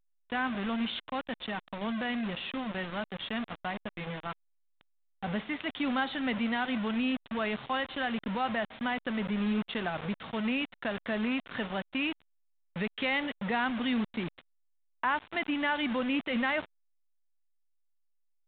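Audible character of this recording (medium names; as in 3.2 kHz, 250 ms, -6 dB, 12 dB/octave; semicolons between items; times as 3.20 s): a quantiser's noise floor 6-bit, dither none; A-law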